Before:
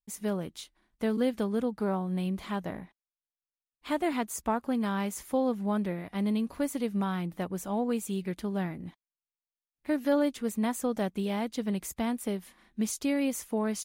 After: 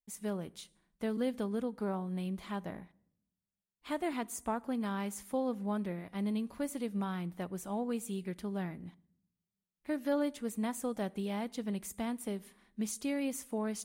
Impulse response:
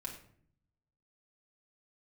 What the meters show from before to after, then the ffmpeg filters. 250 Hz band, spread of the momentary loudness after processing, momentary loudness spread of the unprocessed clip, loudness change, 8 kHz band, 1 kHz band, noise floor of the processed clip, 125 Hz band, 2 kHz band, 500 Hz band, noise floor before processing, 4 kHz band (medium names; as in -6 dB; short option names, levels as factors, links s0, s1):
-5.5 dB, 7 LU, 7 LU, -5.5 dB, -4.5 dB, -6.0 dB, under -85 dBFS, -5.5 dB, -6.0 dB, -6.0 dB, under -85 dBFS, -6.0 dB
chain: -filter_complex "[0:a]asplit=2[s0][s1];[s1]equalizer=f=9100:t=o:w=0.55:g=14[s2];[1:a]atrim=start_sample=2205,asetrate=33957,aresample=44100[s3];[s2][s3]afir=irnorm=-1:irlink=0,volume=0.133[s4];[s0][s4]amix=inputs=2:normalize=0,volume=0.473"